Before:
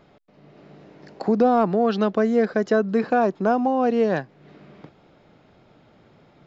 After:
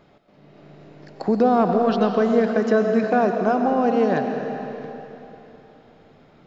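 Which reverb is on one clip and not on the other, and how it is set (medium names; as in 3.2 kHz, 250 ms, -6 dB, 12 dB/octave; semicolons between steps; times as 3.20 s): algorithmic reverb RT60 3.3 s, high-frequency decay 0.95×, pre-delay 65 ms, DRR 4 dB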